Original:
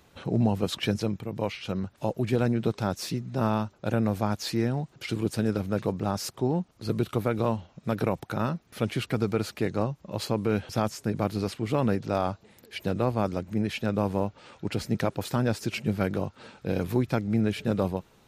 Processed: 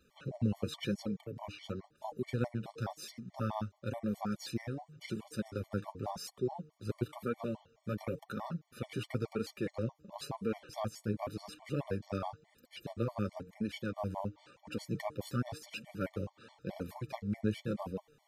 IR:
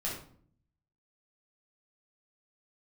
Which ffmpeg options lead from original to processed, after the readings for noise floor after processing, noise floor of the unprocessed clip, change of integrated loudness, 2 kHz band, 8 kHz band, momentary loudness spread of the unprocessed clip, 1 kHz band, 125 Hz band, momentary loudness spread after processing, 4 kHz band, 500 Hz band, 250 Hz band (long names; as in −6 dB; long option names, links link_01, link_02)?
−73 dBFS, −61 dBFS, −10.5 dB, −10.5 dB, −11.0 dB, 6 LU, −10.5 dB, −10.5 dB, 8 LU, −11.0 dB, −11.0 dB, −10.5 dB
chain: -af "bandreject=frequency=152.4:width_type=h:width=4,bandreject=frequency=304.8:width_type=h:width=4,bandreject=frequency=457.2:width_type=h:width=4,flanger=delay=3.6:depth=7.1:regen=18:speed=0.95:shape=triangular,afftfilt=real='re*gt(sin(2*PI*4.7*pts/sr)*(1-2*mod(floor(b*sr/1024/590),2)),0)':imag='im*gt(sin(2*PI*4.7*pts/sr)*(1-2*mod(floor(b*sr/1024/590),2)),0)':win_size=1024:overlap=0.75,volume=-4dB"